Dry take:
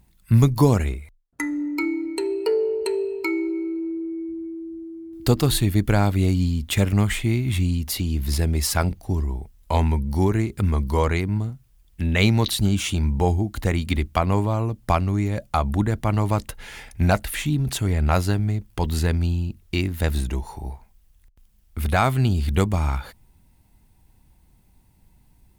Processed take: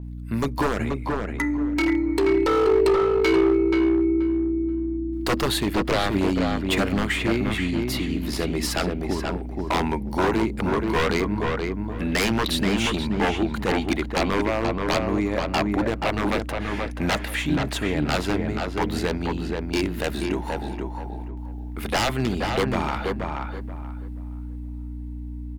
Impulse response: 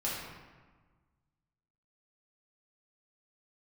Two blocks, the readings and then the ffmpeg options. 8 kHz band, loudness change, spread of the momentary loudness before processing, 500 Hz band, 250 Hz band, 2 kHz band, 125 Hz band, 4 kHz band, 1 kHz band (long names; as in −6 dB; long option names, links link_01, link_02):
−3.5 dB, −1.0 dB, 11 LU, +3.0 dB, +1.5 dB, +3.5 dB, −8.5 dB, +2.0 dB, +1.0 dB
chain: -filter_complex "[0:a]highpass=300,highshelf=frequency=4000:gain=-11.5,dynaudnorm=framelen=210:gausssize=13:maxgain=5dB,aeval=exprs='val(0)+0.0178*(sin(2*PI*60*n/s)+sin(2*PI*2*60*n/s)/2+sin(2*PI*3*60*n/s)/3+sin(2*PI*4*60*n/s)/4+sin(2*PI*5*60*n/s)/5)':channel_layout=same,aeval=exprs='0.133*(abs(mod(val(0)/0.133+3,4)-2)-1)':channel_layout=same,asplit=2[link_01][link_02];[link_02]adelay=480,lowpass=frequency=2300:poles=1,volume=-3dB,asplit=2[link_03][link_04];[link_04]adelay=480,lowpass=frequency=2300:poles=1,volume=0.25,asplit=2[link_05][link_06];[link_06]adelay=480,lowpass=frequency=2300:poles=1,volume=0.25,asplit=2[link_07][link_08];[link_08]adelay=480,lowpass=frequency=2300:poles=1,volume=0.25[link_09];[link_03][link_05][link_07][link_09]amix=inputs=4:normalize=0[link_10];[link_01][link_10]amix=inputs=2:normalize=0,adynamicequalizer=threshold=0.00501:dfrequency=5900:dqfactor=0.7:tfrequency=5900:tqfactor=0.7:attack=5:release=100:ratio=0.375:range=2:mode=cutabove:tftype=highshelf,volume=2dB"